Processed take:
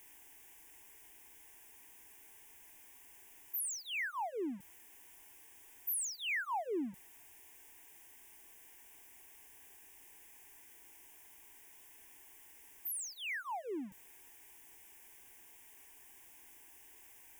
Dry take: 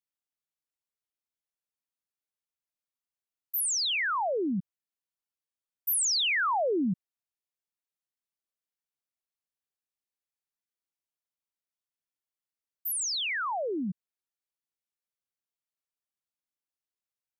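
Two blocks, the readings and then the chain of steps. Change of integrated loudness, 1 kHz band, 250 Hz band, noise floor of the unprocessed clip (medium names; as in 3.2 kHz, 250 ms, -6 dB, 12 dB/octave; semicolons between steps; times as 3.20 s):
-10.5 dB, -10.0 dB, -10.5 dB, under -85 dBFS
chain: jump at every zero crossing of -38.5 dBFS; static phaser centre 860 Hz, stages 8; trim -8.5 dB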